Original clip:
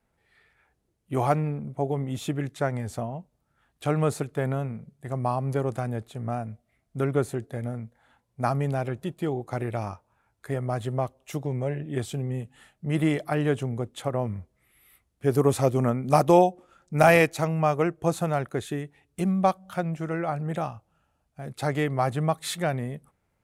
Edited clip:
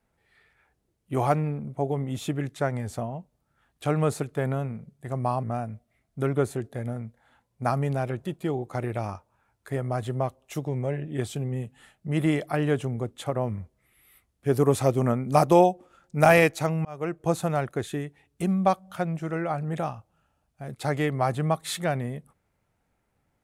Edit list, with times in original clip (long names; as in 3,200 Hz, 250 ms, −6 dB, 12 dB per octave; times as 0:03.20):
0:05.43–0:06.21: remove
0:17.63–0:18.02: fade in